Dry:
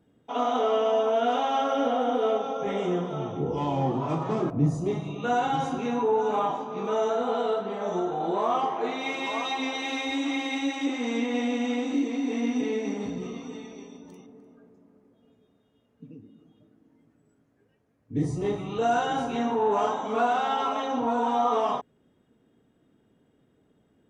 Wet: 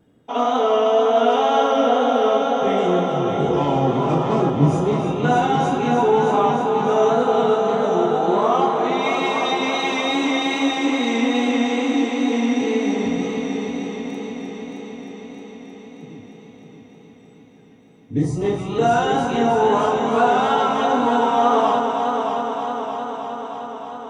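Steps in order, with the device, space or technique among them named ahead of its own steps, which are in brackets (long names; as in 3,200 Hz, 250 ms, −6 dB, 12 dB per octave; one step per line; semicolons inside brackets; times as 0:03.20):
multi-head tape echo (echo machine with several playback heads 311 ms, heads first and second, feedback 71%, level −9 dB; tape wow and flutter 21 cents)
level +6.5 dB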